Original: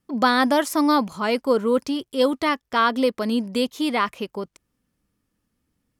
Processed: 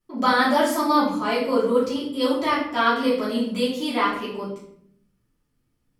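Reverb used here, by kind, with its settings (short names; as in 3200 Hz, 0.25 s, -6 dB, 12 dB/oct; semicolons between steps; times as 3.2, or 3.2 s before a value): shoebox room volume 120 m³, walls mixed, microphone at 2.9 m; gain -10.5 dB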